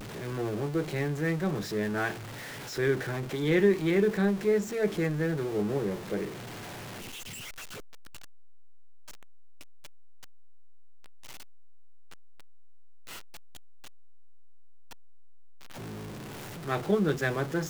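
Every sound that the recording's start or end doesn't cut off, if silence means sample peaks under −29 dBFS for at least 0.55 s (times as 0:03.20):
0:02.78–0:06.25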